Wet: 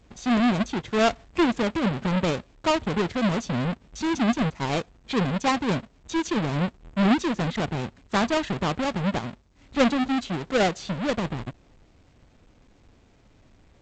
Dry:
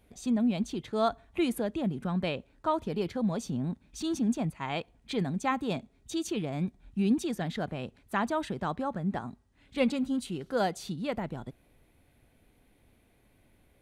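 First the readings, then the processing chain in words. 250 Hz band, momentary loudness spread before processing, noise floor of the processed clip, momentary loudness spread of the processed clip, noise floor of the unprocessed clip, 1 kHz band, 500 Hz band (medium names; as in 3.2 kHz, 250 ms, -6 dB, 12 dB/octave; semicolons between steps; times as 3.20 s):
+6.0 dB, 8 LU, -58 dBFS, 8 LU, -66 dBFS, +7.0 dB, +6.5 dB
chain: square wave that keeps the level; trim +2.5 dB; G.722 64 kbps 16 kHz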